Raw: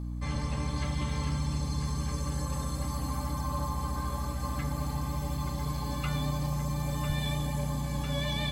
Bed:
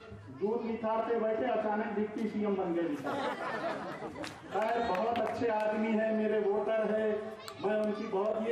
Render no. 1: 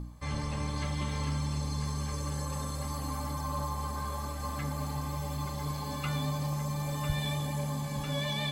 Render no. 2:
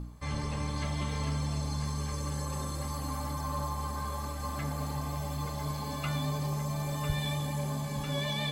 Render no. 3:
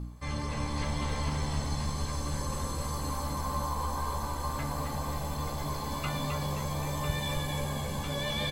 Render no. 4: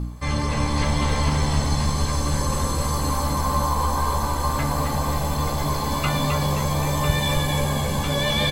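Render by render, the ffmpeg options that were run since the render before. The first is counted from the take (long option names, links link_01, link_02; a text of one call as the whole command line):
ffmpeg -i in.wav -af "bandreject=frequency=60:width_type=h:width=4,bandreject=frequency=120:width_type=h:width=4,bandreject=frequency=180:width_type=h:width=4,bandreject=frequency=240:width_type=h:width=4,bandreject=frequency=300:width_type=h:width=4" out.wav
ffmpeg -i in.wav -i bed.wav -filter_complex "[1:a]volume=-20.5dB[link_01];[0:a][link_01]amix=inputs=2:normalize=0" out.wav
ffmpeg -i in.wav -filter_complex "[0:a]asplit=2[link_01][link_02];[link_02]adelay=17,volume=-10dB[link_03];[link_01][link_03]amix=inputs=2:normalize=0,asplit=8[link_04][link_05][link_06][link_07][link_08][link_09][link_10][link_11];[link_05]adelay=263,afreqshift=-67,volume=-4.5dB[link_12];[link_06]adelay=526,afreqshift=-134,volume=-9.7dB[link_13];[link_07]adelay=789,afreqshift=-201,volume=-14.9dB[link_14];[link_08]adelay=1052,afreqshift=-268,volume=-20.1dB[link_15];[link_09]adelay=1315,afreqshift=-335,volume=-25.3dB[link_16];[link_10]adelay=1578,afreqshift=-402,volume=-30.5dB[link_17];[link_11]adelay=1841,afreqshift=-469,volume=-35.7dB[link_18];[link_04][link_12][link_13][link_14][link_15][link_16][link_17][link_18]amix=inputs=8:normalize=0" out.wav
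ffmpeg -i in.wav -af "volume=10.5dB" out.wav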